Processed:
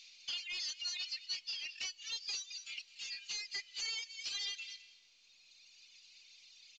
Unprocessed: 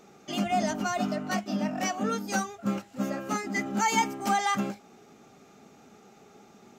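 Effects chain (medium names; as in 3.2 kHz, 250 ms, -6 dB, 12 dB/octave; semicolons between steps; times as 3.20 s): delay 213 ms -11.5 dB; on a send at -18 dB: reverberation RT60 1.4 s, pre-delay 125 ms; on the sum: reverb removal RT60 2 s; steep high-pass 2.5 kHz 48 dB/octave; tilt EQ -4 dB/octave; compression 20:1, threshold -51 dBFS, peak gain reduction 14.5 dB; peaking EQ 4.5 kHz +13.5 dB 0.38 oct; overdrive pedal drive 17 dB, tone 4.3 kHz, clips at -32 dBFS; trim +4 dB; µ-law 128 kbps 16 kHz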